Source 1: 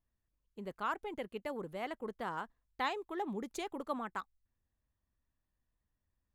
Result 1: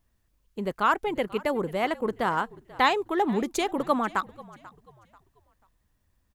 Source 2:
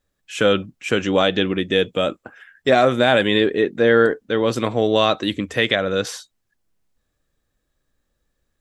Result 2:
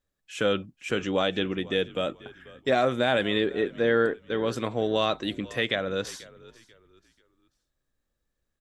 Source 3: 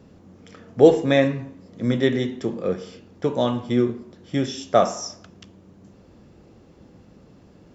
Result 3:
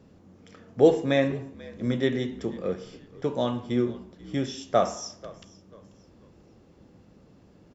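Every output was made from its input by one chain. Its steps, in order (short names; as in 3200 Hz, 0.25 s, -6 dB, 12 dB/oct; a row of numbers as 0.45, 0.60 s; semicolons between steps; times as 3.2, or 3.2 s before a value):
frequency-shifting echo 0.488 s, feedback 33%, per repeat -57 Hz, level -20.5 dB; match loudness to -27 LUFS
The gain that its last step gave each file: +13.5, -8.0, -5.0 dB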